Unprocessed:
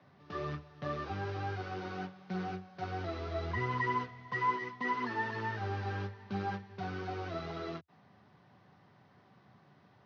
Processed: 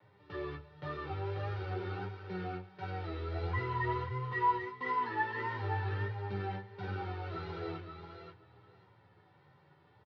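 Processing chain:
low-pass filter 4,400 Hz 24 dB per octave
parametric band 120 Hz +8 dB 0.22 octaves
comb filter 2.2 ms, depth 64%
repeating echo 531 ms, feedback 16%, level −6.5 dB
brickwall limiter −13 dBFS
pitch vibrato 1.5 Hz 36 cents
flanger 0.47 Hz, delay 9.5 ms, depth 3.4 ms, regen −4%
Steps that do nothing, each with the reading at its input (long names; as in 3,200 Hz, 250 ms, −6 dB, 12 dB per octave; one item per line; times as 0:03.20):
brickwall limiter −13 dBFS: peak of its input −18.5 dBFS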